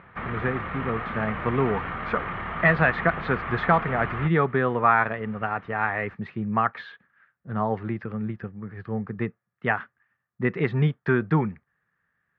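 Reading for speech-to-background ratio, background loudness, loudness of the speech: 6.5 dB, −32.5 LKFS, −26.0 LKFS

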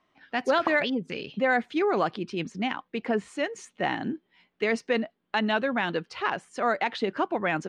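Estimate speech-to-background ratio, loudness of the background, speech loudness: 8.0 dB, −36.0 LKFS, −28.0 LKFS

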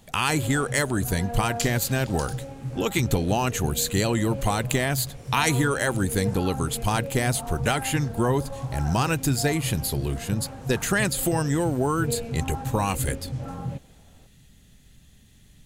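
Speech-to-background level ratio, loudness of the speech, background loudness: 9.0 dB, −25.5 LKFS, −34.5 LKFS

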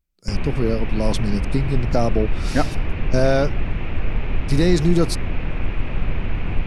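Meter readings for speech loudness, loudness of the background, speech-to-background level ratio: −22.5 LKFS, −27.5 LKFS, 5.0 dB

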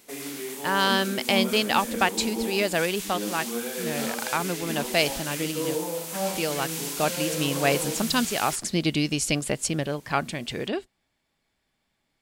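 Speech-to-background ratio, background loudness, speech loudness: 4.0 dB, −30.5 LKFS, −26.5 LKFS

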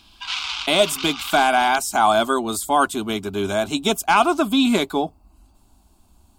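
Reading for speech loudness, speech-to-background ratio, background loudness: −19.5 LKFS, 9.5 dB, −29.0 LKFS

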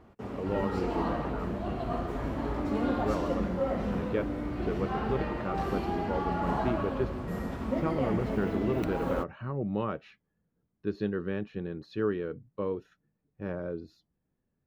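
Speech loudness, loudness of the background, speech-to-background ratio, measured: −35.0 LKFS, −33.0 LKFS, −2.0 dB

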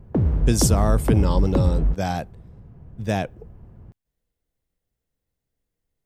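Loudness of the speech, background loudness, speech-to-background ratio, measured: −25.0 LKFS, −22.5 LKFS, −2.5 dB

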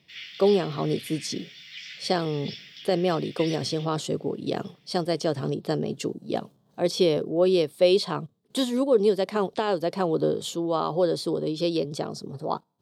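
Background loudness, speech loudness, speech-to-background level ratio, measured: −40.5 LKFS, −26.5 LKFS, 14.0 dB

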